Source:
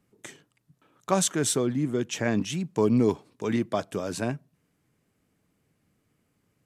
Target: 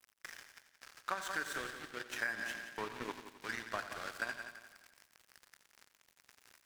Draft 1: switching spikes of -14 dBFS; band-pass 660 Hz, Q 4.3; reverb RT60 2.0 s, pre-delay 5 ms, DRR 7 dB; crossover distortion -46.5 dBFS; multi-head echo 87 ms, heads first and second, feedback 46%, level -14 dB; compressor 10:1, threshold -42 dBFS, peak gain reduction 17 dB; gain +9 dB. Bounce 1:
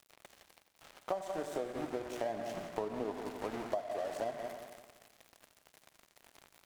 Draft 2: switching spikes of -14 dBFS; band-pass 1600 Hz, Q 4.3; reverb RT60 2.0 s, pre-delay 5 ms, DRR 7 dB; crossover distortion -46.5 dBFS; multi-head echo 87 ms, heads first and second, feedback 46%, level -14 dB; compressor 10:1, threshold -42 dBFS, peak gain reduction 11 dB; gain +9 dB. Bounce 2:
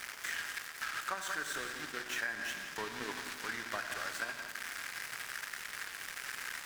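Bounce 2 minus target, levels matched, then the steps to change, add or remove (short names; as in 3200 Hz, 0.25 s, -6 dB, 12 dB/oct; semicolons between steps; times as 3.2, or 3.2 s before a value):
switching spikes: distortion +9 dB
change: switching spikes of -23 dBFS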